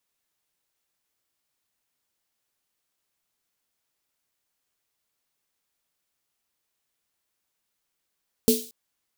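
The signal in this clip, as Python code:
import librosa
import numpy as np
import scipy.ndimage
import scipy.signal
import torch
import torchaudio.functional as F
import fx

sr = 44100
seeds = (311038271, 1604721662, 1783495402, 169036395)

y = fx.drum_snare(sr, seeds[0], length_s=0.23, hz=240.0, second_hz=440.0, noise_db=-6.0, noise_from_hz=3300.0, decay_s=0.28, noise_decay_s=0.46)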